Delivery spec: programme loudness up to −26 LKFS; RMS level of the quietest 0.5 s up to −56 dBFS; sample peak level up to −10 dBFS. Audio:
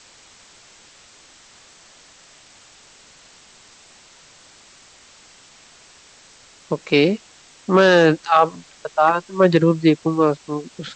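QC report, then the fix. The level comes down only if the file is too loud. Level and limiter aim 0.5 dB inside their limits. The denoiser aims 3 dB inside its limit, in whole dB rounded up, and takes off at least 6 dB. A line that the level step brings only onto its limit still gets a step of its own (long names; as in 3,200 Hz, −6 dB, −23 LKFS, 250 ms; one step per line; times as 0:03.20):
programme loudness −17.5 LKFS: out of spec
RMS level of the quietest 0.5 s −49 dBFS: out of spec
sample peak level −3.5 dBFS: out of spec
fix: level −9 dB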